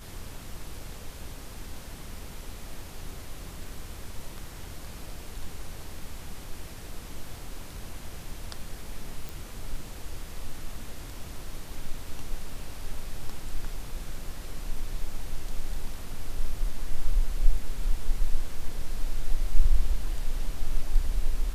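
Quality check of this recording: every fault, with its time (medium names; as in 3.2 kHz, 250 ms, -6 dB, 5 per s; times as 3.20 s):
9.29 s: pop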